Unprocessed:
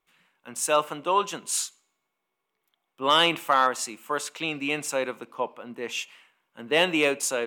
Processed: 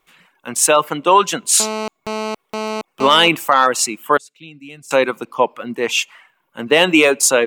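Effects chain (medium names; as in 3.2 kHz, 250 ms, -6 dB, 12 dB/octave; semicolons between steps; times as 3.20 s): 4.17–4.91 s: amplifier tone stack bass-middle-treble 10-0-1; reverb removal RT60 0.6 s; 1.60–3.28 s: mobile phone buzz -37 dBFS; loudness maximiser +15 dB; trim -1 dB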